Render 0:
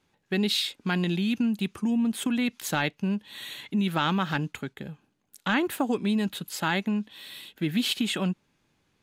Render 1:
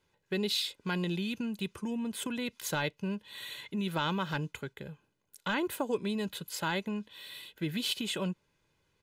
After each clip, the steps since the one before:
dynamic equaliser 1,800 Hz, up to −4 dB, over −39 dBFS, Q 1.1
comb filter 2 ms, depth 51%
level −4.5 dB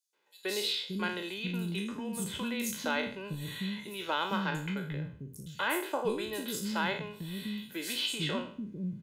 peak hold with a decay on every bin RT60 0.48 s
three-band delay without the direct sound highs, mids, lows 130/580 ms, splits 300/5,100 Hz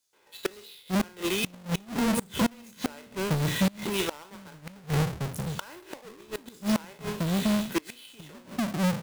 each half-wave held at its own peak
gate with flip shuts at −26 dBFS, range −27 dB
level +7.5 dB

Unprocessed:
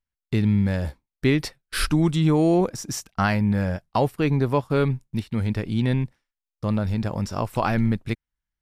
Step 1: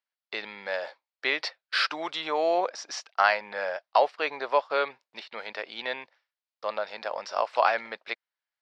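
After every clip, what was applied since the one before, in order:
Chebyshev band-pass filter 580–4,800 Hz, order 3
level +3 dB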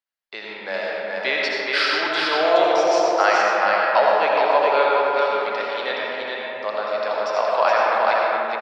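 automatic gain control gain up to 5.5 dB
single-tap delay 421 ms −3.5 dB
comb and all-pass reverb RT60 3.6 s, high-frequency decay 0.35×, pre-delay 40 ms, DRR −3.5 dB
level −2.5 dB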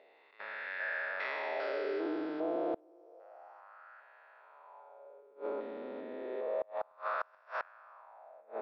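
spectrum averaged block by block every 400 ms
LFO wah 0.3 Hz 250–1,600 Hz, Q 3.3
gate with flip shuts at −24 dBFS, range −30 dB

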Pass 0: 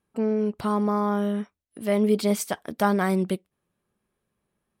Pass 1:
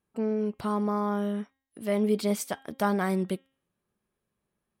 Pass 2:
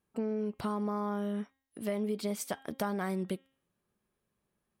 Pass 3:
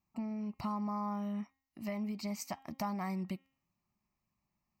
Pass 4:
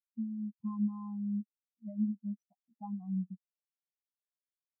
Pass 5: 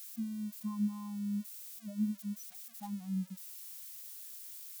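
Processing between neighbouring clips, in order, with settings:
hum removal 268.4 Hz, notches 14; level −4 dB
downward compressor, threshold −30 dBFS, peak gain reduction 10 dB
phaser with its sweep stopped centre 2,300 Hz, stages 8
every bin expanded away from the loudest bin 4 to 1
spike at every zero crossing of −38 dBFS; level −1 dB

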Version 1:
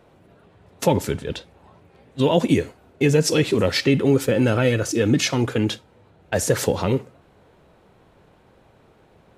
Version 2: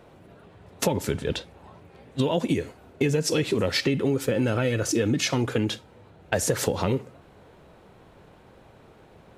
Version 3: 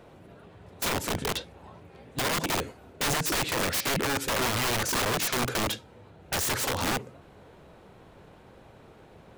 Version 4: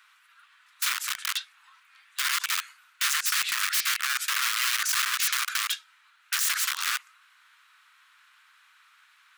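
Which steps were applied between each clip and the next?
downward compressor 6 to 1, threshold −23 dBFS, peak gain reduction 11 dB; level +2.5 dB
wrap-around overflow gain 22 dB
Butterworth high-pass 1,200 Hz 48 dB per octave; level +3.5 dB

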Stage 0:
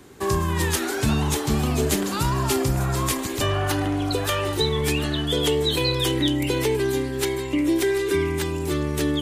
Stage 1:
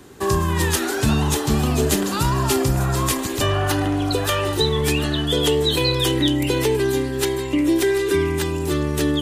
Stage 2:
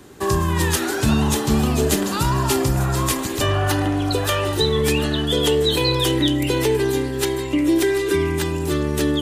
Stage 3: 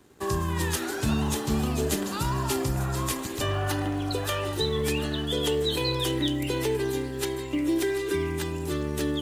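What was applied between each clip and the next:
notch filter 2,200 Hz, Q 15; level +3 dB
convolution reverb RT60 1.7 s, pre-delay 3 ms, DRR 12.5 dB
mu-law and A-law mismatch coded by A; level −7.5 dB

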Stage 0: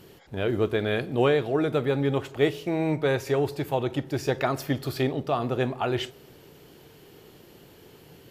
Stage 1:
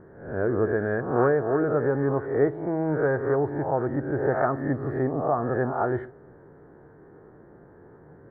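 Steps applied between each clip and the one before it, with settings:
peak hold with a rise ahead of every peak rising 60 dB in 0.64 s
elliptic low-pass filter 1,700 Hz, stop band 40 dB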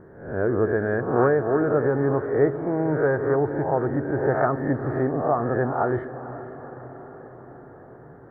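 feedback delay with all-pass diffusion 489 ms, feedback 63%, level −14 dB
level +2 dB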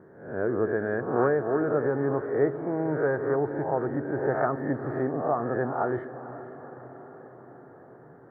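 high-pass filter 130 Hz 12 dB per octave
level −4 dB

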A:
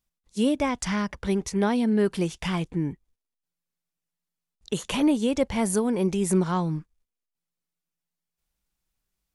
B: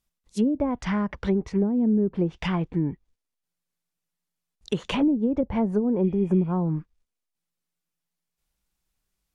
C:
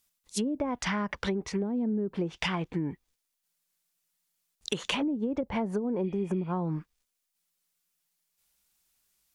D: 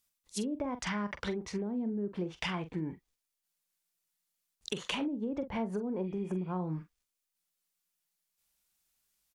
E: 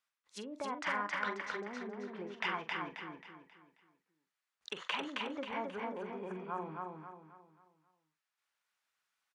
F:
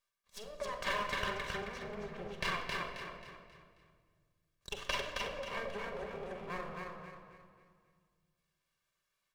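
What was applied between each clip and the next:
treble cut that deepens with the level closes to 320 Hz, closed at −18.5 dBFS; healed spectral selection 0:06.07–0:06.50, 1,800–5,100 Hz before; level +2 dB
spectral tilt +2.5 dB per octave; downward compressor, threshold −29 dBFS, peak gain reduction 7 dB; level +2.5 dB
double-tracking delay 44 ms −11 dB; level −5 dB
resonant band-pass 1,400 Hz, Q 1.3; repeating echo 268 ms, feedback 39%, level −3 dB; level +4.5 dB
lower of the sound and its delayed copy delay 1.8 ms; rectangular room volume 2,200 cubic metres, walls mixed, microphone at 1.2 metres; level +1 dB

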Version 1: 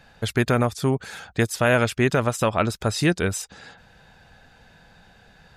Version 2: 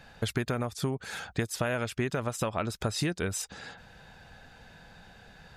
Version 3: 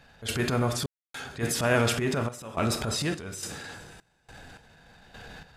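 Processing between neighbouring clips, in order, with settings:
downward compressor 10 to 1, threshold −26 dBFS, peak gain reduction 12.5 dB
coupled-rooms reverb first 0.45 s, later 4 s, from −18 dB, DRR 7 dB; transient designer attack −11 dB, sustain +5 dB; sample-and-hold tremolo, depth 100%; level +8 dB

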